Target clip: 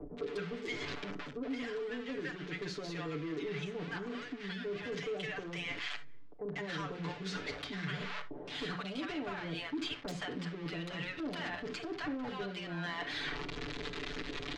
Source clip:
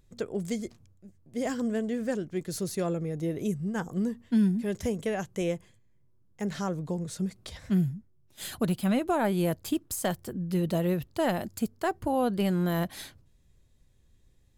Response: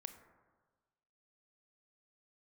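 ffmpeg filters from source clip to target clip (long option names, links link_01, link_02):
-filter_complex "[0:a]aeval=exprs='val(0)+0.5*0.01*sgn(val(0))':channel_layout=same[link_01];[1:a]atrim=start_sample=2205,atrim=end_sample=3528,asetrate=39690,aresample=44100[link_02];[link_01][link_02]afir=irnorm=-1:irlink=0,acrossover=split=290|6600[link_03][link_04][link_05];[link_05]acrusher=bits=4:mix=0:aa=0.000001[link_06];[link_03][link_04][link_06]amix=inputs=3:normalize=0,acrossover=split=300|1400[link_07][link_08][link_09];[link_07]acompressor=threshold=-39dB:ratio=4[link_10];[link_08]acompressor=threshold=-47dB:ratio=4[link_11];[link_09]acompressor=threshold=-51dB:ratio=4[link_12];[link_10][link_11][link_12]amix=inputs=3:normalize=0,acrossover=split=310 4200:gain=0.1 1 0.112[link_13][link_14][link_15];[link_13][link_14][link_15]amix=inputs=3:normalize=0,bandreject=frequency=60:width_type=h:width=6,bandreject=frequency=120:width_type=h:width=6,bandreject=frequency=180:width_type=h:width=6,acrossover=split=680[link_16][link_17];[link_17]adelay=170[link_18];[link_16][link_18]amix=inputs=2:normalize=0,aeval=exprs='0.0237*sin(PI/2*2.24*val(0)/0.0237)':channel_layout=same,equalizer=frequency=820:width=1.2:gain=-5.5,areverse,acompressor=threshold=-50dB:ratio=12,areverse,bandreject=frequency=570:width=12,aecho=1:1:6.9:0.97,volume=11.5dB"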